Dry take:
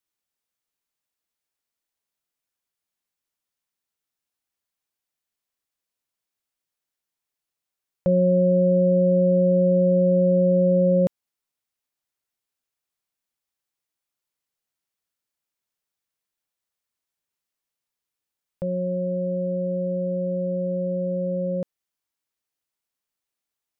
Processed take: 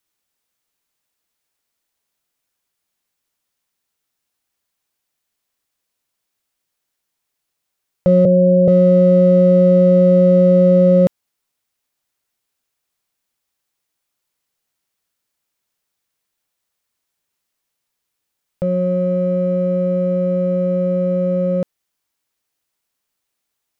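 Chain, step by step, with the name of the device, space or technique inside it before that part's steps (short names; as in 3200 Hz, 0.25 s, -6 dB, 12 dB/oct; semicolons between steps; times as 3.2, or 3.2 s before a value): parallel distortion (in parallel at -11 dB: hard clip -30.5 dBFS, distortion -5 dB); 8.25–8.68 on the sum: Chebyshev band-pass 100–660 Hz, order 5; gain +7 dB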